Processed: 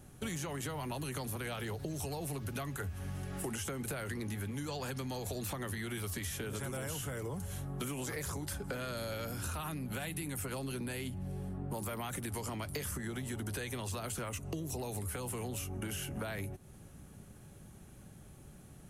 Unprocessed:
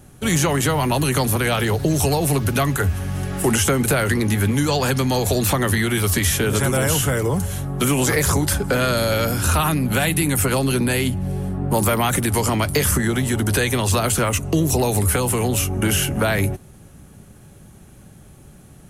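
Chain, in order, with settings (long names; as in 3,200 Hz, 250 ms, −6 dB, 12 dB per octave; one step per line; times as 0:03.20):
downward compressor, threshold −28 dBFS, peak gain reduction 13.5 dB
level −9 dB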